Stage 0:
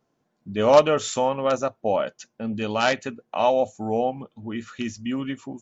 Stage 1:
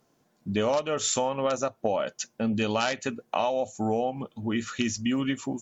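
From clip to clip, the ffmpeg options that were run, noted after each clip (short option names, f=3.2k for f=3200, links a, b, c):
-af "aemphasis=mode=production:type=cd,acompressor=threshold=-27dB:ratio=12,volume=4.5dB"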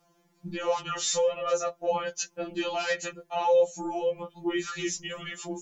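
-af "alimiter=limit=-19.5dB:level=0:latency=1:release=12,afftfilt=real='re*2.83*eq(mod(b,8),0)':imag='im*2.83*eq(mod(b,8),0)':win_size=2048:overlap=0.75,volume=3.5dB"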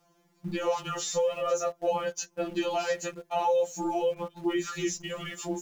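-filter_complex "[0:a]acrossover=split=1000|6600[a][b][c];[a]acompressor=threshold=-28dB:ratio=4[d];[b]acompressor=threshold=-42dB:ratio=4[e];[c]acompressor=threshold=-42dB:ratio=4[f];[d][e][f]amix=inputs=3:normalize=0,asplit=2[g][h];[h]aeval=exprs='val(0)*gte(abs(val(0)),0.00631)':c=same,volume=-6.5dB[i];[g][i]amix=inputs=2:normalize=0"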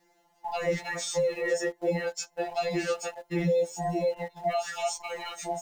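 -af "afftfilt=real='real(if(between(b,1,1008),(2*floor((b-1)/48)+1)*48-b,b),0)':imag='imag(if(between(b,1,1008),(2*floor((b-1)/48)+1)*48-b,b),0)*if(between(b,1,1008),-1,1)':win_size=2048:overlap=0.75"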